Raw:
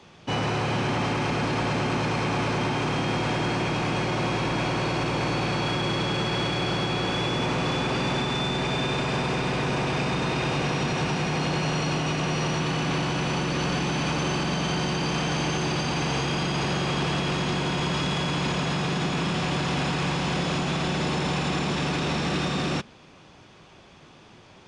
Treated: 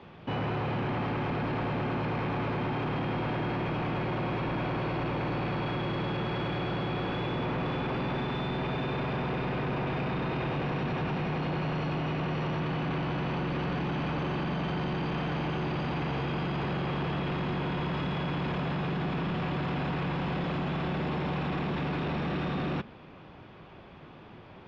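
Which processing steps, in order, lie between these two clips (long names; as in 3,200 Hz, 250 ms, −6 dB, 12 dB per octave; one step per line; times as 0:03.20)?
in parallel at −3 dB: compressor whose output falls as the input rises −30 dBFS
on the sum: soft clipping −22 dBFS, distortion −14 dB
high-frequency loss of the air 390 metres
level −3.5 dB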